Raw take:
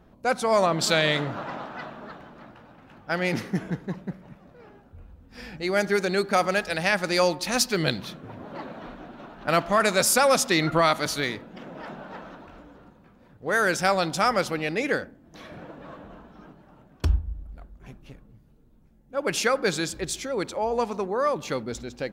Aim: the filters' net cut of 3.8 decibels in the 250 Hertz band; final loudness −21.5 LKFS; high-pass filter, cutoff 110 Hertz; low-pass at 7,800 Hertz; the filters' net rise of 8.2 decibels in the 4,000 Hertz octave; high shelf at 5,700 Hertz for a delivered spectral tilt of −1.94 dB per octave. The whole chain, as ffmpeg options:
ffmpeg -i in.wav -af "highpass=110,lowpass=7800,equalizer=frequency=250:width_type=o:gain=-5.5,equalizer=frequency=4000:width_type=o:gain=9,highshelf=frequency=5700:gain=3,volume=1dB" out.wav

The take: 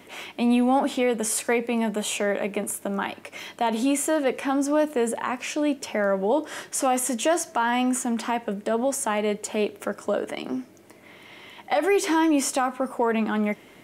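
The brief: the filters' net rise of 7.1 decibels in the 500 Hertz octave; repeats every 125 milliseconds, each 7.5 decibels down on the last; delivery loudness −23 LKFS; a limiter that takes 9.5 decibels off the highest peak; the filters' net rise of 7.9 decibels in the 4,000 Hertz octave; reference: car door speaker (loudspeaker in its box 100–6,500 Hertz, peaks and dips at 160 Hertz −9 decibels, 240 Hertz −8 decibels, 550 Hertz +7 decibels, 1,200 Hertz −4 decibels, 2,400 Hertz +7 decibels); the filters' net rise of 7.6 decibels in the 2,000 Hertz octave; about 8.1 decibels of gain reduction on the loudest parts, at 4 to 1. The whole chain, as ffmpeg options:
ffmpeg -i in.wav -af "equalizer=frequency=500:width_type=o:gain=4,equalizer=frequency=2000:width_type=o:gain=3.5,equalizer=frequency=4000:width_type=o:gain=8,acompressor=threshold=-24dB:ratio=4,alimiter=limit=-19.5dB:level=0:latency=1,highpass=100,equalizer=frequency=160:width_type=q:width=4:gain=-9,equalizer=frequency=240:width_type=q:width=4:gain=-8,equalizer=frequency=550:width_type=q:width=4:gain=7,equalizer=frequency=1200:width_type=q:width=4:gain=-4,equalizer=frequency=2400:width_type=q:width=4:gain=7,lowpass=frequency=6500:width=0.5412,lowpass=frequency=6500:width=1.3066,aecho=1:1:125|250|375|500|625:0.422|0.177|0.0744|0.0312|0.0131,volume=4.5dB" out.wav

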